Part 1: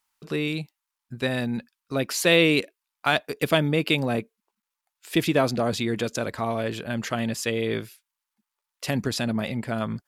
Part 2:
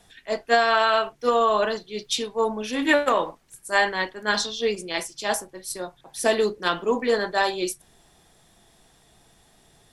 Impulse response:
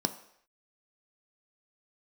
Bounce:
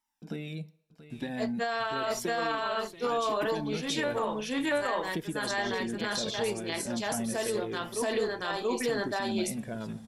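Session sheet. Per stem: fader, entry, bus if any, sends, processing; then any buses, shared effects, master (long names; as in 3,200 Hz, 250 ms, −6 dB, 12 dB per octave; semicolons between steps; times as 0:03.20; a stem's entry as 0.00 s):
−6.5 dB, 0.00 s, send −10.5 dB, echo send −11 dB, low-shelf EQ 420 Hz +7 dB; downward compressor, threshold −25 dBFS, peak gain reduction 12.5 dB; flanger whose copies keep moving one way falling 0.88 Hz
0.0 dB, 1.10 s, no send, echo send −4.5 dB, automatic ducking −9 dB, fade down 1.60 s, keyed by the first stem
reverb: on, pre-delay 3 ms
echo: single-tap delay 682 ms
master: brickwall limiter −21 dBFS, peak gain reduction 11 dB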